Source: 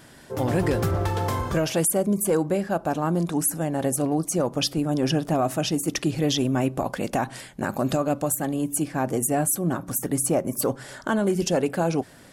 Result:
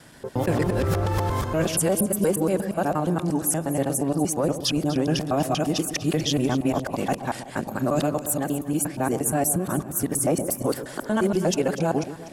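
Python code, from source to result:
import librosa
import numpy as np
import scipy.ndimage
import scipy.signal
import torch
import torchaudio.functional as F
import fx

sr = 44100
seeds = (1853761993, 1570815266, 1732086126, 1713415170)

y = fx.local_reverse(x, sr, ms=118.0)
y = fx.echo_alternate(y, sr, ms=123, hz=910.0, feedback_pct=69, wet_db=-11.0)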